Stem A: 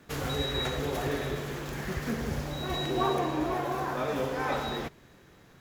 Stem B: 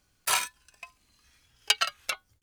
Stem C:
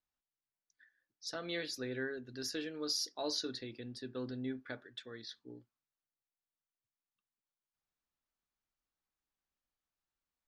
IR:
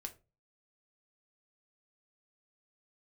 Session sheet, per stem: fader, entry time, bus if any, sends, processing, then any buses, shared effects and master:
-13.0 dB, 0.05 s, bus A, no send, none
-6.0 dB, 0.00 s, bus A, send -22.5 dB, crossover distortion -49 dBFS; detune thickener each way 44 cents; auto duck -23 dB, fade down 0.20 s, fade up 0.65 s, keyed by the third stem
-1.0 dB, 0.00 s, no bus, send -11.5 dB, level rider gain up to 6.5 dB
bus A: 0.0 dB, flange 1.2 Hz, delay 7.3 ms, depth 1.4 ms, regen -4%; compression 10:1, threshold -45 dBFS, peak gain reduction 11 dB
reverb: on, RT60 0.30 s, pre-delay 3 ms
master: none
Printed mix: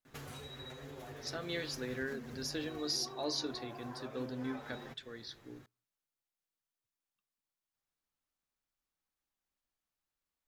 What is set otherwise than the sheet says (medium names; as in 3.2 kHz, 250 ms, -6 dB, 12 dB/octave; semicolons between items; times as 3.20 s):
stem A -13.0 dB -> -2.0 dB; stem B -6.0 dB -> -12.5 dB; stem C: missing level rider gain up to 6.5 dB